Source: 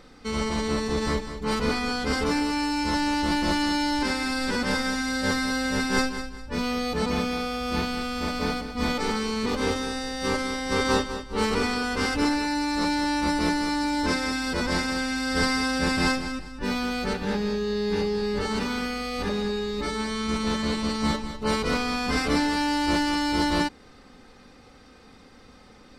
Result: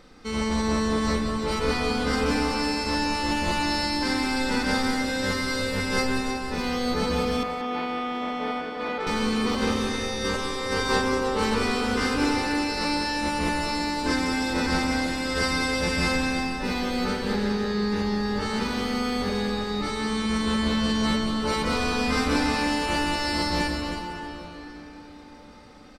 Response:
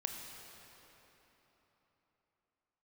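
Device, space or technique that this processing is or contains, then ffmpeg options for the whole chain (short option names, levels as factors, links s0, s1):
cave: -filter_complex "[0:a]aecho=1:1:317:0.355[s0];[1:a]atrim=start_sample=2205[s1];[s0][s1]afir=irnorm=-1:irlink=0,asettb=1/sr,asplit=3[s2][s3][s4];[s2]atrim=end=7.434[s5];[s3]atrim=start=7.43:end=9.07,asetpts=PTS-STARTPTS,afade=t=in:d=0.004:c=qsin,afade=t=out:st=1.636:d=0.004:c=qsin,acrossover=split=270 3000:gain=0.0708 1 0.112[s6][s7][s8];[s6][s7][s8]amix=inputs=3:normalize=0[s9];[s4]atrim=start=9.066[s10];[s5][s9]acrossfade=d=0.004:c1=hsin:c2=qsin[s11];[s11][s10]acrossfade=d=0.004:c1=qsin:c2=hsin,aecho=1:1:182:0.299"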